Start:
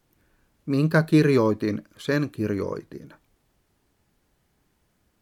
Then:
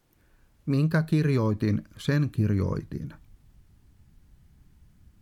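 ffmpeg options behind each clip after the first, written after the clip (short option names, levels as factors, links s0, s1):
-af "asubboost=boost=8.5:cutoff=170,acompressor=threshold=0.1:ratio=6"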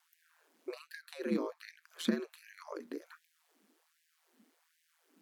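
-filter_complex "[0:a]aeval=exprs='val(0)*sin(2*PI*81*n/s)':c=same,acrossover=split=260[s0][s1];[s1]acompressor=threshold=0.0112:ratio=5[s2];[s0][s2]amix=inputs=2:normalize=0,afftfilt=real='re*gte(b*sr/1024,210*pow(1600/210,0.5+0.5*sin(2*PI*1.3*pts/sr)))':imag='im*gte(b*sr/1024,210*pow(1600/210,0.5+0.5*sin(2*PI*1.3*pts/sr)))':win_size=1024:overlap=0.75,volume=1.41"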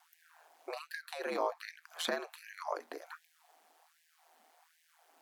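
-af "highpass=f=740:t=q:w=4.9,volume=1.58"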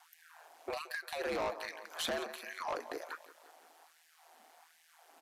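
-af "aecho=1:1:173|346|519|692|865:0.119|0.0642|0.0347|0.0187|0.0101,asoftclip=type=tanh:threshold=0.0158,aresample=32000,aresample=44100,volume=1.78"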